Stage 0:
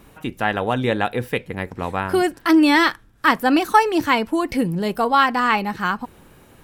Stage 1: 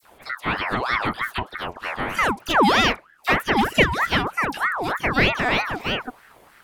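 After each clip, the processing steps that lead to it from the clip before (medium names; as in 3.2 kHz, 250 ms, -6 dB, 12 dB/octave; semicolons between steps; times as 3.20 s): phase dispersion lows, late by 53 ms, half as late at 1.8 kHz; ring modulator with a swept carrier 1.1 kHz, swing 55%, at 3.2 Hz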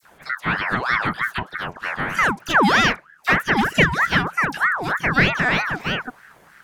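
fifteen-band graphic EQ 160 Hz +10 dB, 1.6 kHz +9 dB, 6.3 kHz +5 dB; trim -2.5 dB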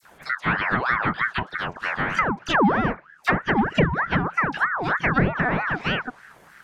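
low-pass that closes with the level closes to 940 Hz, closed at -14 dBFS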